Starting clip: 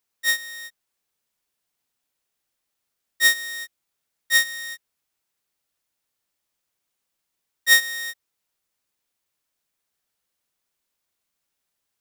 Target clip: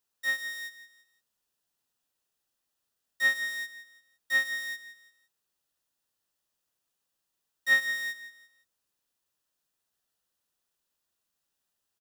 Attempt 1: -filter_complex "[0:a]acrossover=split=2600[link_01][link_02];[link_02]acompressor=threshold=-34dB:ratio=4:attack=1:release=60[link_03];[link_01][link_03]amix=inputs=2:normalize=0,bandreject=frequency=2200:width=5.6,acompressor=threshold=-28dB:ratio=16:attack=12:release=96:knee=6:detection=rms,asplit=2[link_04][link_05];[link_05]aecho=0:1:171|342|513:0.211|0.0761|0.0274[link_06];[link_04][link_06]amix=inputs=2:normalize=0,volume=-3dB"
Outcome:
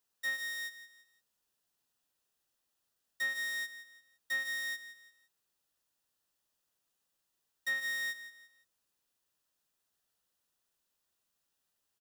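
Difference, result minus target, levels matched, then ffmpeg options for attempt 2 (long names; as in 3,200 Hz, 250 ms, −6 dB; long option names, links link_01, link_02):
downward compressor: peak gain reduction +13.5 dB
-filter_complex "[0:a]acrossover=split=2600[link_01][link_02];[link_02]acompressor=threshold=-34dB:ratio=4:attack=1:release=60[link_03];[link_01][link_03]amix=inputs=2:normalize=0,bandreject=frequency=2200:width=5.6,asplit=2[link_04][link_05];[link_05]aecho=0:1:171|342|513:0.211|0.0761|0.0274[link_06];[link_04][link_06]amix=inputs=2:normalize=0,volume=-3dB"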